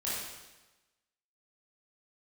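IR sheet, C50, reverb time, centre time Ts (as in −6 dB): −2.0 dB, 1.1 s, 85 ms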